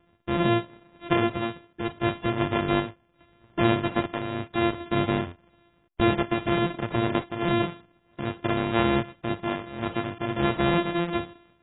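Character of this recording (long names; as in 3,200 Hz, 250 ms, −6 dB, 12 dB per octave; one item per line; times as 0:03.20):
a buzz of ramps at a fixed pitch in blocks of 128 samples
sample-and-hold tremolo 2.5 Hz
AAC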